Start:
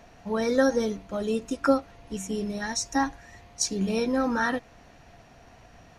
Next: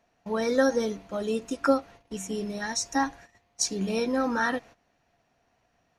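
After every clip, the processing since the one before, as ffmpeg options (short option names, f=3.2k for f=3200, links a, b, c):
-af "agate=range=-16dB:threshold=-45dB:ratio=16:detection=peak,lowshelf=f=120:g=-9.5"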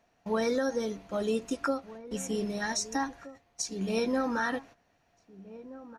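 -filter_complex "[0:a]alimiter=limit=-20dB:level=0:latency=1:release=429,asplit=2[a][b];[b]adelay=1574,volume=-16dB,highshelf=f=4k:g=-35.4[c];[a][c]amix=inputs=2:normalize=0"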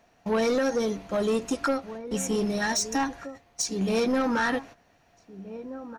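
-af "asoftclip=type=tanh:threshold=-27dB,volume=7.5dB"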